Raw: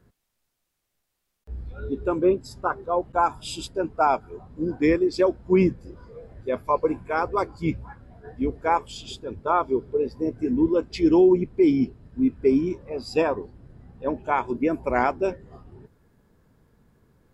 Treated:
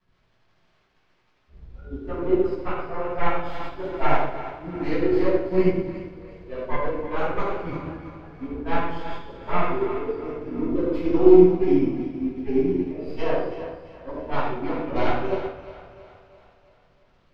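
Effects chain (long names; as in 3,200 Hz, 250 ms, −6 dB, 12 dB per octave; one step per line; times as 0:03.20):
stylus tracing distortion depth 0.28 ms
parametric band 140 Hz −4.5 dB 2 octaves
in parallel at +2 dB: brickwall limiter −18.5 dBFS, peak gain reduction 9.5 dB
on the sum: surface crackle 92 per second −27 dBFS
high-frequency loss of the air 210 metres
on a send: echo with a time of its own for lows and highs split 500 Hz, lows 116 ms, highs 336 ms, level −7 dB
on the sum: rectangular room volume 700 cubic metres, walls mixed, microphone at 8.7 metres
expander for the loud parts 1.5 to 1, over −11 dBFS
level −17.5 dB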